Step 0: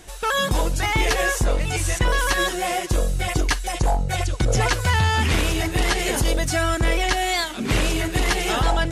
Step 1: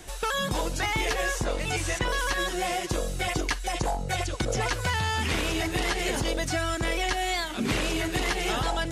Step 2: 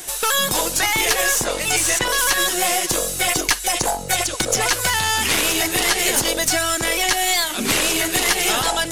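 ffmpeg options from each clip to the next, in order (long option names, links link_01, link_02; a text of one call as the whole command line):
ffmpeg -i in.wav -filter_complex "[0:a]acrossover=split=190|3300|6900[link_01][link_02][link_03][link_04];[link_01]acompressor=threshold=-32dB:ratio=4[link_05];[link_02]acompressor=threshold=-27dB:ratio=4[link_06];[link_03]acompressor=threshold=-37dB:ratio=4[link_07];[link_04]acompressor=threshold=-45dB:ratio=4[link_08];[link_05][link_06][link_07][link_08]amix=inputs=4:normalize=0" out.wav
ffmpeg -i in.wav -af "aemphasis=mode=production:type=bsi,aeval=exprs='0.355*(cos(1*acos(clip(val(0)/0.355,-1,1)))-cos(1*PI/2))+0.0398*(cos(4*acos(clip(val(0)/0.355,-1,1)))-cos(4*PI/2))':channel_layout=same,volume=7.5dB" out.wav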